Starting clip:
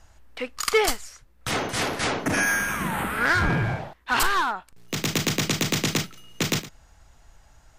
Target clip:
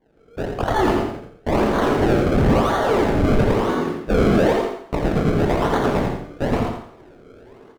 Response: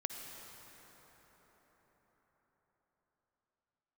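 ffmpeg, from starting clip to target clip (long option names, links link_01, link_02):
-filter_complex "[0:a]lowshelf=frequency=580:width_type=q:width=3:gain=-12.5,afreqshift=-470,flanger=delay=19:depth=5.7:speed=0.64,bandreject=frequency=67.22:width_type=h:width=4,bandreject=frequency=134.44:width_type=h:width=4,bandreject=frequency=201.66:width_type=h:width=4,bandreject=frequency=268.88:width_type=h:width=4,bandreject=frequency=336.1:width_type=h:width=4,bandreject=frequency=403.32:width_type=h:width=4,bandreject=frequency=470.54:width_type=h:width=4,bandreject=frequency=537.76:width_type=h:width=4,bandreject=frequency=604.98:width_type=h:width=4,bandreject=frequency=672.2:width_type=h:width=4,bandreject=frequency=739.42:width_type=h:width=4,bandreject=frequency=806.64:width_type=h:width=4,bandreject=frequency=873.86:width_type=h:width=4,bandreject=frequency=941.08:width_type=h:width=4,bandreject=frequency=1008.3:width_type=h:width=4,bandreject=frequency=1075.52:width_type=h:width=4,bandreject=frequency=1142.74:width_type=h:width=4,bandreject=frequency=1209.96:width_type=h:width=4,bandreject=frequency=1277.18:width_type=h:width=4,bandreject=frequency=1344.4:width_type=h:width=4,bandreject=frequency=1411.62:width_type=h:width=4,bandreject=frequency=1478.84:width_type=h:width=4,bandreject=frequency=1546.06:width_type=h:width=4,bandreject=frequency=1613.28:width_type=h:width=4,bandreject=frequency=1680.5:width_type=h:width=4,bandreject=frequency=1747.72:width_type=h:width=4,bandreject=frequency=1814.94:width_type=h:width=4,bandreject=frequency=1882.16:width_type=h:width=4,bandreject=frequency=1949.38:width_type=h:width=4,bandreject=frequency=2016.6:width_type=h:width=4,bandreject=frequency=2083.82:width_type=h:width=4,bandreject=frequency=2151.04:width_type=h:width=4,bandreject=frequency=2218.26:width_type=h:width=4,bandreject=frequency=2285.48:width_type=h:width=4,bandreject=frequency=2352.7:width_type=h:width=4,bandreject=frequency=2419.92:width_type=h:width=4,bandreject=frequency=2487.14:width_type=h:width=4,bandreject=frequency=2554.36:width_type=h:width=4,acrusher=samples=33:mix=1:aa=0.000001:lfo=1:lforange=33:lforate=1[link_01];[1:a]atrim=start_sample=2205,afade=type=out:start_time=0.19:duration=0.01,atrim=end_sample=8820[link_02];[link_01][link_02]afir=irnorm=-1:irlink=0,dynaudnorm=framelen=140:gausssize=3:maxgain=16.5dB,asoftclip=type=tanh:threshold=-12dB,lowpass=frequency=1200:poles=1,aecho=1:1:85|170|255|340:0.531|0.154|0.0446|0.0129"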